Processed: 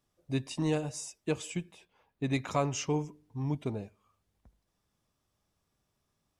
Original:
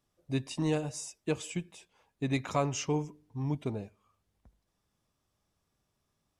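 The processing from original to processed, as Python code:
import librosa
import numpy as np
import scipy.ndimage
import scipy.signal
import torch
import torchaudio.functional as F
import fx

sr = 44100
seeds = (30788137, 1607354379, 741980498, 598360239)

y = fx.peak_eq(x, sr, hz=7500.0, db=-11.0, octaves=1.3, at=(1.74, 2.24))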